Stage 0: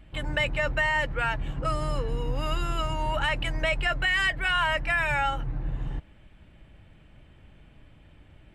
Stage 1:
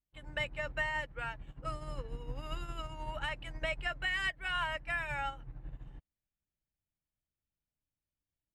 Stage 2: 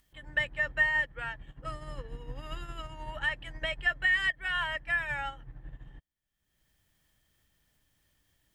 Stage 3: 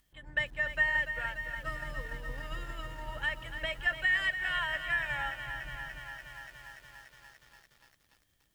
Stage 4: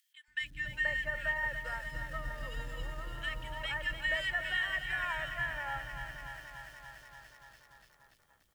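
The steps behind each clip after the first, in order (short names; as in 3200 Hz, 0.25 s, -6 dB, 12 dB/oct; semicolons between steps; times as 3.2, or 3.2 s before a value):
upward expander 2.5:1, over -46 dBFS; gain -7.5 dB
upward compressor, threshold -55 dBFS; small resonant body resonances 1800/3200 Hz, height 13 dB, ringing for 25 ms
lo-fi delay 0.29 s, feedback 80%, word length 9-bit, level -9.5 dB; gain -2 dB
three bands offset in time highs, lows, mids 0.28/0.48 s, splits 330/1800 Hz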